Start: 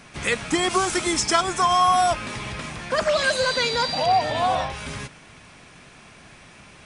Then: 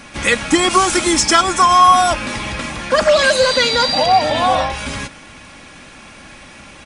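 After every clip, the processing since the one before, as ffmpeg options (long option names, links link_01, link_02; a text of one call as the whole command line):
ffmpeg -i in.wav -af "acontrast=45,aecho=1:1:3.6:0.44,volume=2dB" out.wav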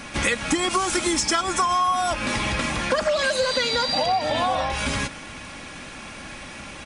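ffmpeg -i in.wav -af "acompressor=threshold=-21dB:ratio=6,volume=1dB" out.wav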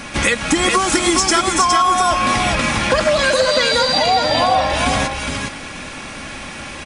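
ffmpeg -i in.wav -af "aecho=1:1:413:0.596,volume=6dB" out.wav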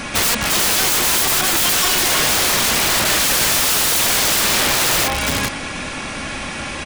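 ffmpeg -i in.wav -af "aeval=exprs='(mod(5.96*val(0)+1,2)-1)/5.96':channel_layout=same,volume=4dB" out.wav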